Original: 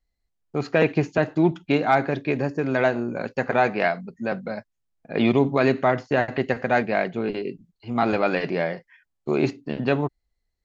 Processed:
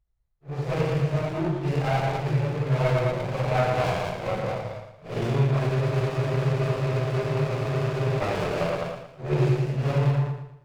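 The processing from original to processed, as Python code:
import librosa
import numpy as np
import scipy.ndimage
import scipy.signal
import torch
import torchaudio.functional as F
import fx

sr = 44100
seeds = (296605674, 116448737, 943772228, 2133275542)

y = fx.phase_scramble(x, sr, seeds[0], window_ms=200)
y = fx.low_shelf_res(y, sr, hz=170.0, db=6.5, q=3.0)
y = fx.echo_multitap(y, sr, ms=(93, 200), db=(-6.5, -6.0))
y = fx.rider(y, sr, range_db=4, speed_s=0.5)
y = fx.peak_eq(y, sr, hz=260.0, db=-10.5, octaves=0.9)
y = fx.echo_feedback(y, sr, ms=115, feedback_pct=37, wet_db=-8.0)
y = fx.spec_freeze(y, sr, seeds[1], at_s=5.72, hold_s=2.49)
y = fx.running_max(y, sr, window=17)
y = y * 10.0 ** (-2.5 / 20.0)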